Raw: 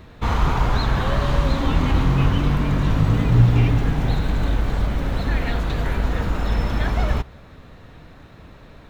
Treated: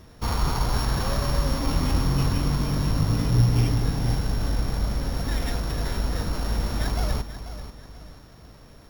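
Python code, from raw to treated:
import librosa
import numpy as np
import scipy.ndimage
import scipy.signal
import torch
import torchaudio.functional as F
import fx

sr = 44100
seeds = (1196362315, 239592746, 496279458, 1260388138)

y = np.r_[np.sort(x[:len(x) // 8 * 8].reshape(-1, 8), axis=1).ravel(), x[len(x) // 8 * 8:]]
y = fx.echo_feedback(y, sr, ms=488, feedback_pct=36, wet_db=-12)
y = F.gain(torch.from_numpy(y), -5.0).numpy()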